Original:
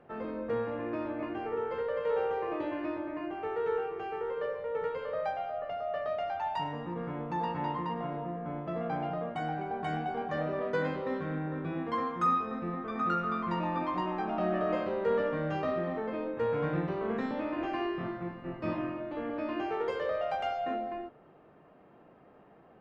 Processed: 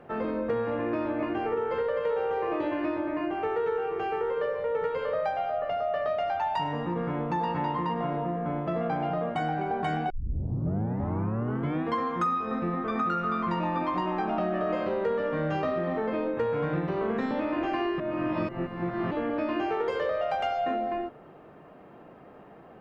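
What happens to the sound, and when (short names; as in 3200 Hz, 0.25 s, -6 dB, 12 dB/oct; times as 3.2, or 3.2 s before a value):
10.1 tape start 1.75 s
18–19.11 reverse
whole clip: compressor, threshold -33 dBFS; gain +8 dB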